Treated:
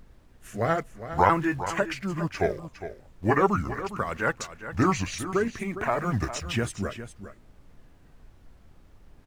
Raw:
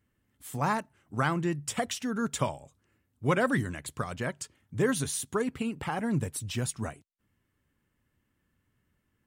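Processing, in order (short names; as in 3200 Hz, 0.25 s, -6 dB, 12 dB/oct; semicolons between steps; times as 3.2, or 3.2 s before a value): repeated pitch sweeps -7.5 st, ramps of 1.296 s; EQ curve 110 Hz 0 dB, 1800 Hz +13 dB, 4100 Hz 0 dB; in parallel at -11.5 dB: bit-crush 7-bit; on the sum: rotary speaker horn 0.6 Hz; added noise brown -51 dBFS; on a send: echo 0.408 s -12 dB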